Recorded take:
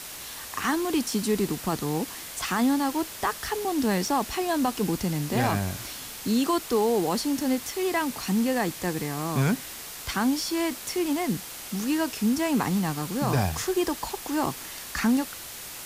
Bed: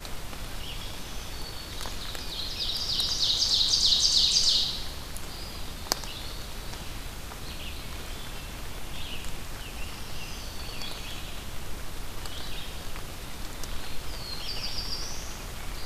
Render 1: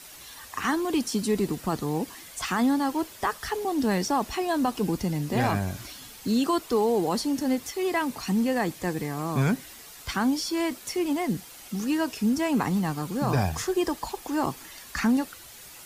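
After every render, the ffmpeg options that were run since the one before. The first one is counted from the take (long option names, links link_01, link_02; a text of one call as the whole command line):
ffmpeg -i in.wav -af "afftdn=noise_reduction=9:noise_floor=-40" out.wav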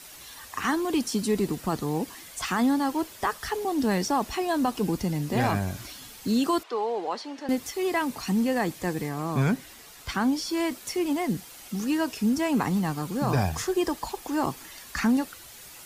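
ffmpeg -i in.wav -filter_complex "[0:a]asettb=1/sr,asplit=3[link_01][link_02][link_03];[link_01]atrim=end=6.634[link_04];[link_02]atrim=start=6.63:end=7.49,asetpts=PTS-STARTPTS,afade=type=in:duration=0.004:curve=qsin,afade=type=out:start_time=0.856:duration=0.004:curve=qsin,highpass=570,lowpass=3300[link_05];[link_03]atrim=start=7.486[link_06];[link_04][link_05]acrossfade=duration=0.004:curve1=hsin:curve2=qsin[link_07];[link_07][link_06]acrossfade=duration=0.004:curve1=qsin:curve2=hsin,asettb=1/sr,asplit=3[link_08][link_09][link_10];[link_08]atrim=end=9.094[link_11];[link_09]atrim=start=9.09:end=10.49,asetpts=PTS-STARTPTS,afade=type=in:duration=0.004:curve=qsin,afade=type=out:start_time=1.396:duration=0.004:curve=qsin,highshelf=frequency=5100:gain=-4[link_12];[link_10]atrim=start=10.486[link_13];[link_11][link_12]acrossfade=duration=0.004:curve1=hsin:curve2=qsin[link_14];[link_14][link_13]acrossfade=duration=0.004:curve1=qsin:curve2=hsin" out.wav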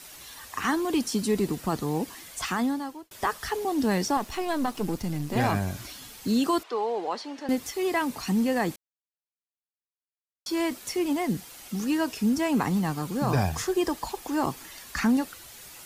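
ffmpeg -i in.wav -filter_complex "[0:a]asettb=1/sr,asplit=3[link_01][link_02][link_03];[link_01]atrim=end=4.174[link_04];[link_02]atrim=start=4.17:end=5.36,asetpts=PTS-STARTPTS,afade=type=in:duration=0.004:curve=qsin,afade=type=out:start_time=1.186:duration=0.004:curve=qsin,aeval=exprs='if(lt(val(0),0),0.447*val(0),val(0))':channel_layout=same[link_05];[link_03]atrim=start=5.356[link_06];[link_04][link_05]acrossfade=duration=0.004:curve1=hsin:curve2=qsin[link_07];[link_07][link_06]acrossfade=duration=0.004:curve1=qsin:curve2=hsin,asplit=4[link_08][link_09][link_10][link_11];[link_08]atrim=end=3.11,asetpts=PTS-STARTPTS,afade=type=out:start_time=2.43:duration=0.68[link_12];[link_09]atrim=start=3.11:end=8.76,asetpts=PTS-STARTPTS,afade=type=in:duration=0.004:curve=hsin,afade=type=out:start_time=5.646:duration=0.004:curve=hsin[link_13];[link_10]atrim=start=8.76:end=10.46,asetpts=PTS-STARTPTS,volume=0[link_14];[link_11]atrim=start=10.46,asetpts=PTS-STARTPTS,afade=type=in:duration=0.004:curve=hsin[link_15];[link_12][link_13][link_14][link_15]concat=n=4:v=0:a=1" out.wav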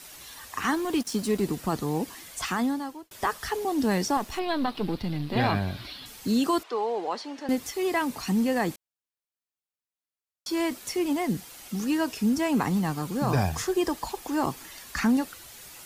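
ffmpeg -i in.wav -filter_complex "[0:a]asettb=1/sr,asplit=3[link_01][link_02][link_03];[link_01]atrim=end=0.744[link_04];[link_02]atrim=start=0.74:end=1.43,asetpts=PTS-STARTPTS,afade=type=in:duration=0.004:curve=qsin,afade=type=out:start_time=0.686:duration=0.004:curve=qsin,aeval=exprs='sgn(val(0))*max(abs(val(0))-0.00794,0)':channel_layout=same[link_05];[link_03]atrim=start=1.426[link_06];[link_04][link_05]acrossfade=duration=0.004:curve1=hsin:curve2=qsin[link_07];[link_07][link_06]acrossfade=duration=0.004:curve1=qsin:curve2=hsin,asettb=1/sr,asplit=3[link_08][link_09][link_10];[link_08]atrim=end=4.394[link_11];[link_09]atrim=start=4.39:end=6.06,asetpts=PTS-STARTPTS,afade=type=in:duration=0.004:curve=qsin,afade=type=out:start_time=1.666:duration=0.004:curve=qsin,highshelf=frequency=5200:width_type=q:width=3:gain=-9[link_12];[link_10]atrim=start=6.056[link_13];[link_11][link_12]acrossfade=duration=0.004:curve1=hsin:curve2=qsin[link_14];[link_14][link_13]acrossfade=duration=0.004:curve1=qsin:curve2=hsin" out.wav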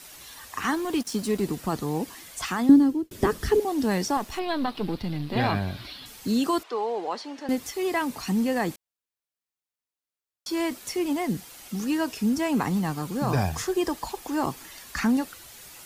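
ffmpeg -i in.wav -filter_complex "[0:a]asettb=1/sr,asplit=3[link_01][link_02][link_03];[link_01]atrim=end=2.694[link_04];[link_02]atrim=start=2.69:end=3.6,asetpts=PTS-STARTPTS,afade=type=in:duration=0.004:curve=qsin,afade=type=out:start_time=0.906:duration=0.004:curve=qsin,lowshelf=frequency=510:width_type=q:width=1.5:gain=13.5[link_05];[link_03]atrim=start=3.596[link_06];[link_04][link_05]acrossfade=duration=0.004:curve1=hsin:curve2=qsin[link_07];[link_07][link_06]acrossfade=duration=0.004:curve1=qsin:curve2=hsin" out.wav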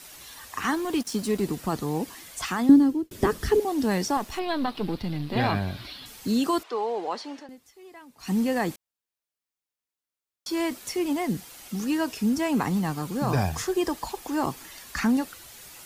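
ffmpeg -i in.wav -filter_complex "[0:a]asplit=3[link_01][link_02][link_03];[link_01]atrim=end=7.5,asetpts=PTS-STARTPTS,afade=type=out:start_time=7.35:duration=0.15:silence=0.0891251[link_04];[link_02]atrim=start=7.5:end=8.18,asetpts=PTS-STARTPTS,volume=-21dB[link_05];[link_03]atrim=start=8.18,asetpts=PTS-STARTPTS,afade=type=in:duration=0.15:silence=0.0891251[link_06];[link_04][link_05][link_06]concat=n=3:v=0:a=1" out.wav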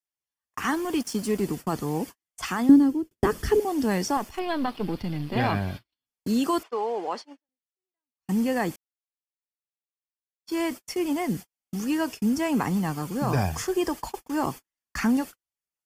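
ffmpeg -i in.wav -af "agate=range=-50dB:threshold=-34dB:ratio=16:detection=peak,bandreject=frequency=3900:width=5.6" out.wav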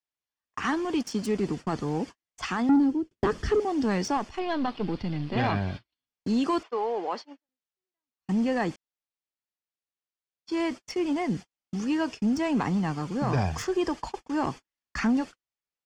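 ffmpeg -i in.wav -filter_complex "[0:a]acrossover=split=6900[link_01][link_02];[link_02]acrusher=bits=4:mix=0:aa=0.5[link_03];[link_01][link_03]amix=inputs=2:normalize=0,asoftclip=type=tanh:threshold=-16.5dB" out.wav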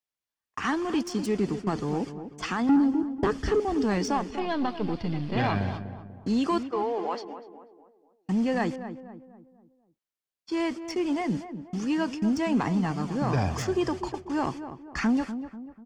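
ffmpeg -i in.wav -filter_complex "[0:a]asplit=2[link_01][link_02];[link_02]adelay=245,lowpass=frequency=1200:poles=1,volume=-10dB,asplit=2[link_03][link_04];[link_04]adelay=245,lowpass=frequency=1200:poles=1,volume=0.46,asplit=2[link_05][link_06];[link_06]adelay=245,lowpass=frequency=1200:poles=1,volume=0.46,asplit=2[link_07][link_08];[link_08]adelay=245,lowpass=frequency=1200:poles=1,volume=0.46,asplit=2[link_09][link_10];[link_10]adelay=245,lowpass=frequency=1200:poles=1,volume=0.46[link_11];[link_01][link_03][link_05][link_07][link_09][link_11]amix=inputs=6:normalize=0" out.wav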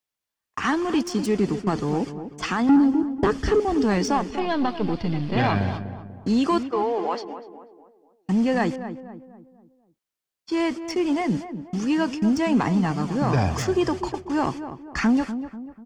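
ffmpeg -i in.wav -af "volume=4.5dB" out.wav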